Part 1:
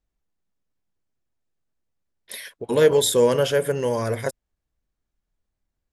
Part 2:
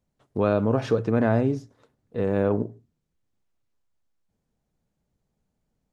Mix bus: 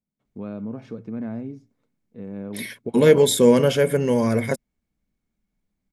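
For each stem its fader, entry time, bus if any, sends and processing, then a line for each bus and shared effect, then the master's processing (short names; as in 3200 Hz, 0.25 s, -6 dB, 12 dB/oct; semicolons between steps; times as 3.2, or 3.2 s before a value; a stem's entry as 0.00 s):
-0.5 dB, 0.25 s, no send, dry
-17.5 dB, 0.00 s, no send, dry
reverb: off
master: small resonant body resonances 210/2200 Hz, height 13 dB, ringing for 30 ms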